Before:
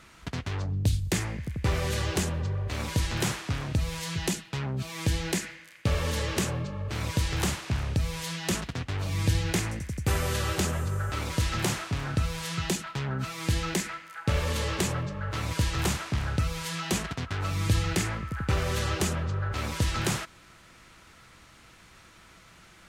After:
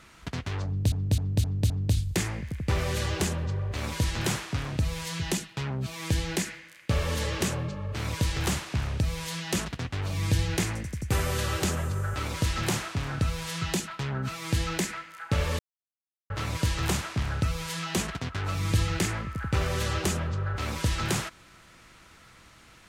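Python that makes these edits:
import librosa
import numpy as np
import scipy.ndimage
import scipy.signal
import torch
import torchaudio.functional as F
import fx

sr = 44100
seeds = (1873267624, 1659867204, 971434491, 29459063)

y = fx.edit(x, sr, fx.repeat(start_s=0.66, length_s=0.26, count=5),
    fx.silence(start_s=14.55, length_s=0.71), tone=tone)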